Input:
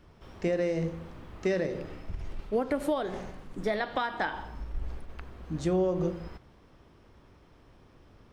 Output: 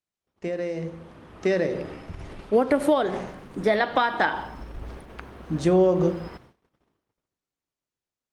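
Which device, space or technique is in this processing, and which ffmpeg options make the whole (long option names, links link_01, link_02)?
video call: -filter_complex "[0:a]asettb=1/sr,asplit=3[link_01][link_02][link_03];[link_01]atrim=end=2.834[link_04];[link_02]atrim=start=2.83:end=4.08,asetpts=PTS-STARTPTS,afade=type=in:duration=0.004:curve=qsin,afade=type=out:start_time=1.246:duration=0.004:curve=qsin,highshelf=frequency=5500:gain=-2.5[link_05];[link_03]atrim=start=4.076[link_06];[link_04][link_05]acrossfade=duration=0.004:curve1=hsin:curve2=qsin[link_07];[link_07][link_06]acrossfade=duration=0.004:curve1=qsin:curve2=hsin,highpass=frequency=150:poles=1,dynaudnorm=framelen=260:gausssize=11:maxgain=10dB,agate=range=-39dB:threshold=-47dB:ratio=16:detection=peak,volume=-1dB" -ar 48000 -c:a libopus -b:a 32k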